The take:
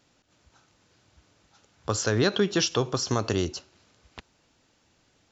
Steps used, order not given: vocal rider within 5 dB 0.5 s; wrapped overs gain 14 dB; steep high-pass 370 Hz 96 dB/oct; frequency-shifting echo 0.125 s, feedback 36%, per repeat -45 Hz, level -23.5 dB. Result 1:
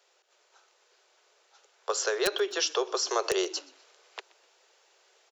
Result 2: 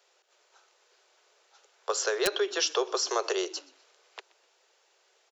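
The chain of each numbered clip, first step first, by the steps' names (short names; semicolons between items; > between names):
steep high-pass > vocal rider > wrapped overs > frequency-shifting echo; vocal rider > steep high-pass > frequency-shifting echo > wrapped overs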